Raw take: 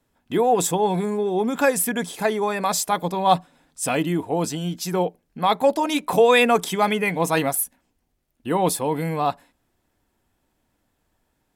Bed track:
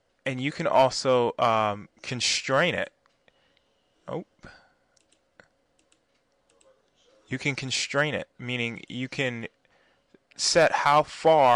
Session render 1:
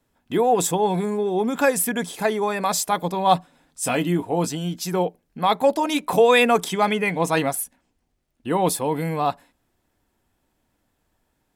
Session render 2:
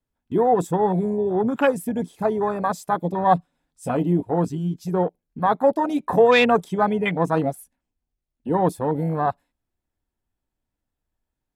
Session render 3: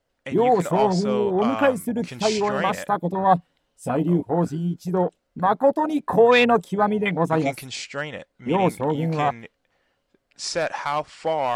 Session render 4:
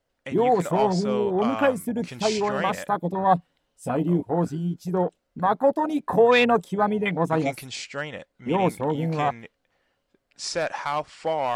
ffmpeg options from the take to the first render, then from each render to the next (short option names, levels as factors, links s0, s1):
-filter_complex "[0:a]asettb=1/sr,asplit=3[s0][s1][s2];[s0]atrim=end=3.824[s3];[s1]atrim=start=3.82:end=4.47,asetpts=PTS-STARTPTS,afade=t=in:d=0.004:c=qsin,afade=t=out:st=0.646:d=0.004:c=qsin,asplit=2[s4][s5];[s5]adelay=17,volume=0.335[s6];[s4][s6]amix=inputs=2:normalize=0,atrim=end_sample=28665[s7];[s2]atrim=start=4.466[s8];[s3][s7]acrossfade=d=0.004:c1=hsin:c2=qsin[s9];[s9][s8]acrossfade=d=0.004:c1=qsin:c2=hsin,asettb=1/sr,asplit=3[s10][s11][s12];[s10]atrim=end=6.684[s13];[s11]atrim=start=6.68:end=8.53,asetpts=PTS-STARTPTS,afade=t=in:d=0.004:c=qsin,afade=t=out:st=1.846:d=0.004:c=qsin,equalizer=f=14000:w=1.2:g=-9[s14];[s12]atrim=start=8.526[s15];[s13][s14]acrossfade=d=0.004:c1=hsin:c2=qsin[s16];[s16][s15]acrossfade=d=0.004:c1=qsin:c2=hsin"
-af "afwtdn=0.0708,lowshelf=f=89:g=11.5"
-filter_complex "[1:a]volume=0.562[s0];[0:a][s0]amix=inputs=2:normalize=0"
-af "volume=0.794"